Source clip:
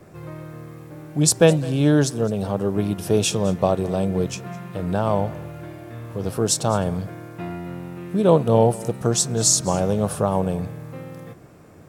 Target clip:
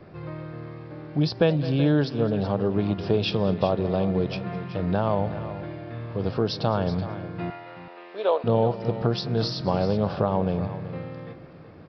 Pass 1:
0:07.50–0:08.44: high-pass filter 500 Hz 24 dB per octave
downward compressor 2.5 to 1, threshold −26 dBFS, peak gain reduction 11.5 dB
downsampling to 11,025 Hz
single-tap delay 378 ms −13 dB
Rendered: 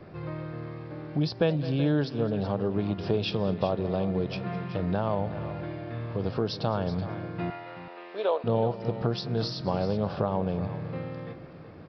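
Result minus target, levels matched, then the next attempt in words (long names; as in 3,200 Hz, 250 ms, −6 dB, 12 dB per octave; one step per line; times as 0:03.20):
downward compressor: peak gain reduction +4 dB
0:07.50–0:08.44: high-pass filter 500 Hz 24 dB per octave
downward compressor 2.5 to 1, threshold −19 dBFS, peak gain reduction 7.5 dB
downsampling to 11,025 Hz
single-tap delay 378 ms −13 dB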